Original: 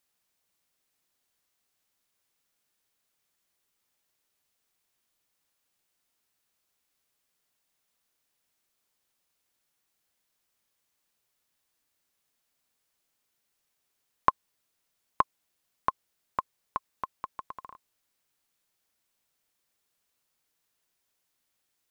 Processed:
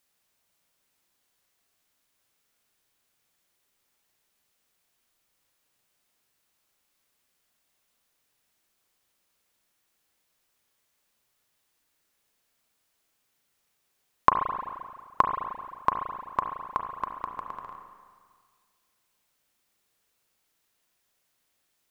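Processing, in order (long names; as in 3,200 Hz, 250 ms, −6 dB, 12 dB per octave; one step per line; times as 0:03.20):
spring reverb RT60 1.8 s, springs 34/43 ms, chirp 40 ms, DRR 3.5 dB
level +3.5 dB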